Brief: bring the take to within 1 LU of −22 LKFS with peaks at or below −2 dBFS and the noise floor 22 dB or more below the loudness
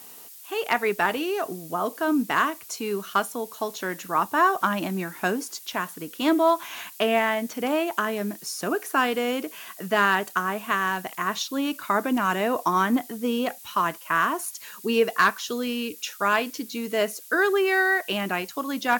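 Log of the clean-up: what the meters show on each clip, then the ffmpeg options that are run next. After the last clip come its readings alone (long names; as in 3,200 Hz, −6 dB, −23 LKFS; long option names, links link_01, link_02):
background noise floor −45 dBFS; target noise floor −47 dBFS; integrated loudness −25.0 LKFS; sample peak −8.5 dBFS; target loudness −22.0 LKFS
→ -af "afftdn=noise_reduction=6:noise_floor=-45"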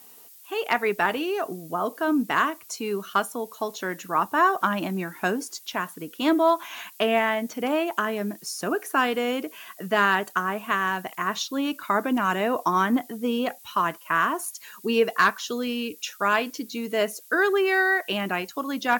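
background noise floor −49 dBFS; integrated loudness −25.5 LKFS; sample peak −8.5 dBFS; target loudness −22.0 LKFS
→ -af "volume=3.5dB"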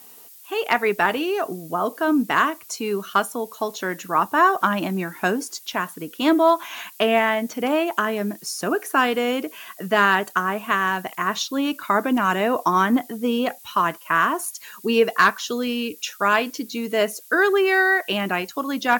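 integrated loudness −22.0 LKFS; sample peak −5.0 dBFS; background noise floor −46 dBFS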